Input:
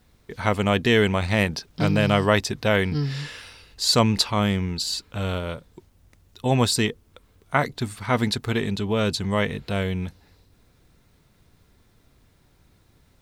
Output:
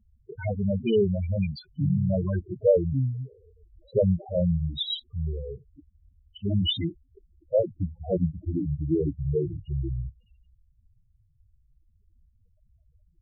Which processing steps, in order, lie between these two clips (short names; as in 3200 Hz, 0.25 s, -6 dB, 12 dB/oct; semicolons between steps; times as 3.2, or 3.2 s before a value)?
gliding pitch shift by -8 st starting unshifted; LFO low-pass square 0.21 Hz 610–3200 Hz; loudest bins only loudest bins 4